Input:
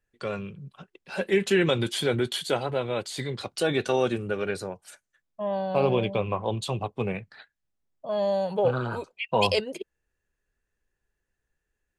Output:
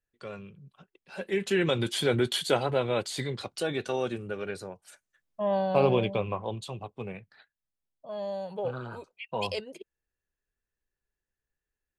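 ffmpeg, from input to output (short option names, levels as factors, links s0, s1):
-af "volume=2.82,afade=t=in:st=1.12:d=1.23:silence=0.316228,afade=t=out:st=3.02:d=0.68:silence=0.446684,afade=t=in:st=4.84:d=0.7:silence=0.398107,afade=t=out:st=5.54:d=1.16:silence=0.281838"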